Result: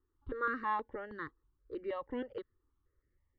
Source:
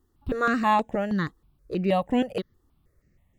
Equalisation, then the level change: four-pole ladder low-pass 2.9 kHz, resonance 60%; static phaser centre 690 Hz, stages 6; 0.0 dB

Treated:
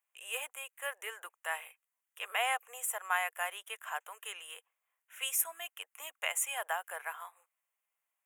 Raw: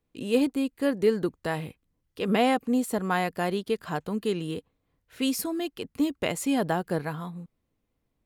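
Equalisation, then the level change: Bessel high-pass 1.2 kHz, order 8; Butterworth band-stop 4.5 kHz, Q 1.2; treble shelf 4.6 kHz +4.5 dB; 0.0 dB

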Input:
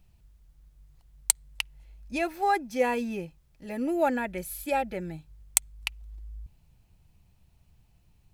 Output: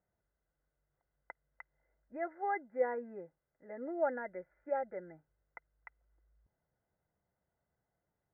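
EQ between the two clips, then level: high-pass 660 Hz 6 dB/octave; rippled Chebyshev low-pass 2.1 kHz, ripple 9 dB; distance through air 450 m; 0.0 dB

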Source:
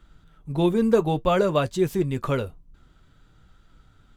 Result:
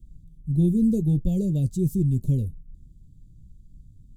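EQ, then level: Chebyshev band-stop 190–8500 Hz, order 2; bass shelf 280 Hz +8.5 dB; 0.0 dB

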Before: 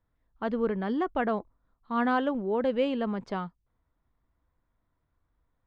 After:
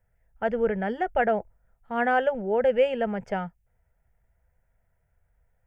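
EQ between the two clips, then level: static phaser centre 1.1 kHz, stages 6; +7.5 dB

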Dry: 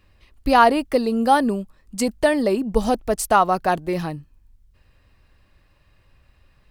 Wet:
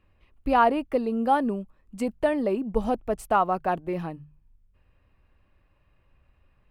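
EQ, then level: peaking EQ 1.9 kHz -7 dB 0.8 oct; resonant high shelf 3.3 kHz -11 dB, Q 1.5; hum notches 50/100/150 Hz; -5.5 dB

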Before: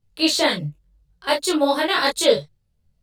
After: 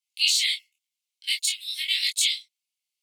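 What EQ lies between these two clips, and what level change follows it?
rippled Chebyshev high-pass 2.1 kHz, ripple 3 dB; +2.5 dB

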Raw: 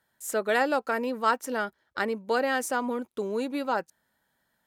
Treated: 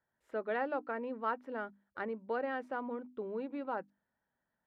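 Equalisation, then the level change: distance through air 410 m; treble shelf 5.1 kHz -10.5 dB; hum notches 50/100/150/200/250/300 Hz; -8.0 dB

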